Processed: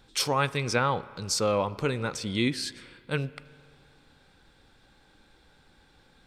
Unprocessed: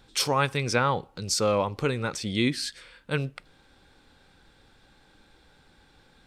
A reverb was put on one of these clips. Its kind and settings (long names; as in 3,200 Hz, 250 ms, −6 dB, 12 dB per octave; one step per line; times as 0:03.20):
spring reverb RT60 2.4 s, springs 31/35 ms, chirp 75 ms, DRR 18 dB
level −1.5 dB